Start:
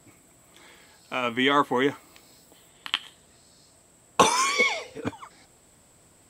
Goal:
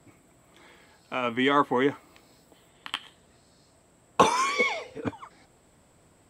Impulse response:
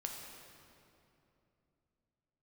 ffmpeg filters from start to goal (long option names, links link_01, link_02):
-filter_complex "[0:a]highshelf=frequency=3600:gain=-9.5,acrossover=split=630|1500[link_01][link_02][link_03];[link_03]asoftclip=type=tanh:threshold=-17.5dB[link_04];[link_01][link_02][link_04]amix=inputs=3:normalize=0"